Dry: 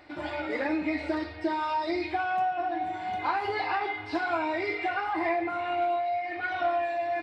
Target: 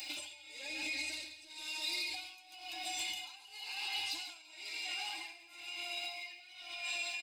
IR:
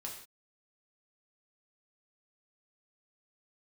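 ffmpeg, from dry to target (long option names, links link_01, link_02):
-filter_complex "[0:a]aexciter=amount=6.6:drive=7.2:freq=3100,asoftclip=type=tanh:threshold=-18.5dB,superequalizer=10b=0.501:11b=0.562:12b=2:13b=0.562:14b=0.398,asplit=2[link_01][link_02];[link_02]aecho=0:1:140|336|610.4|994.6|1532:0.631|0.398|0.251|0.158|0.1[link_03];[link_01][link_03]amix=inputs=2:normalize=0,acompressor=threshold=-32dB:ratio=12,tiltshelf=frequency=1100:gain=-9.5,alimiter=level_in=6.5dB:limit=-24dB:level=0:latency=1:release=265,volume=-6.5dB,aeval=exprs='val(0)+0.00501*sin(2*PI*5000*n/s)':channel_layout=same,flanger=delay=0.8:depth=1.7:regen=80:speed=0.95:shape=triangular,acrossover=split=140|3000[link_04][link_05][link_06];[link_05]acompressor=threshold=-52dB:ratio=4[link_07];[link_04][link_07][link_06]amix=inputs=3:normalize=0,aecho=1:1:3.7:0.5,tremolo=f=0.99:d=0.88,volume=8dB"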